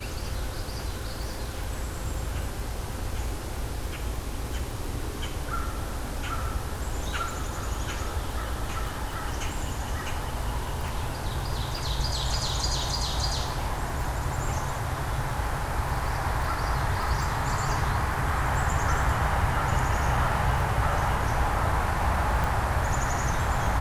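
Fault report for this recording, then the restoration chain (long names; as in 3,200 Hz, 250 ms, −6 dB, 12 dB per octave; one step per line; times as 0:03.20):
surface crackle 38 per second −33 dBFS
0:22.44: click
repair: click removal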